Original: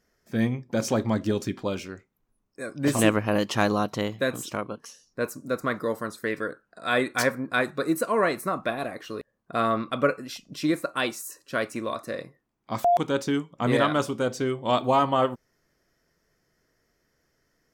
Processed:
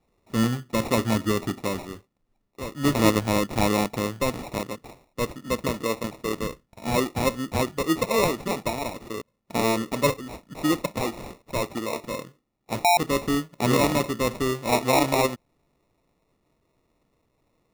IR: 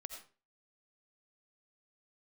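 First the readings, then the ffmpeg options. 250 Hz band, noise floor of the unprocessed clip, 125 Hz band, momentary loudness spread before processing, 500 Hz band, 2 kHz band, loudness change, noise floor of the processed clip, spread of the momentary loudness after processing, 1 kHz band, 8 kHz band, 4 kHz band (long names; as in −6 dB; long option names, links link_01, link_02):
+1.5 dB, −74 dBFS, +2.5 dB, 14 LU, +0.5 dB, −1.5 dB, +1.0 dB, −72 dBFS, 14 LU, +0.5 dB, +4.5 dB, +3.0 dB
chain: -filter_complex "[0:a]acrossover=split=270|1200[link_01][link_02][link_03];[link_03]asoftclip=type=tanh:threshold=-29dB[link_04];[link_01][link_02][link_04]amix=inputs=3:normalize=0,acrusher=samples=28:mix=1:aa=0.000001,volume=1.5dB"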